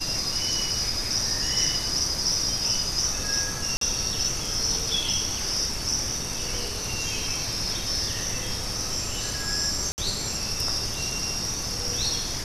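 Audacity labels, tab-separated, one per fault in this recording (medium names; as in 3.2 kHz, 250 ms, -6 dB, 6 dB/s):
3.770000	3.810000	dropout 43 ms
9.920000	9.980000	dropout 59 ms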